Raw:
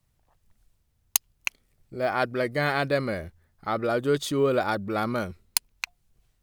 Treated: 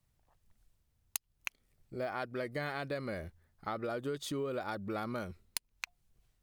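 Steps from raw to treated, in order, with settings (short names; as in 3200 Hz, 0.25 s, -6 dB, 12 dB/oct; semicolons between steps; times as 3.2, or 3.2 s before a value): compressor 6:1, threshold -29 dBFS, peak gain reduction 13.5 dB; gain -5 dB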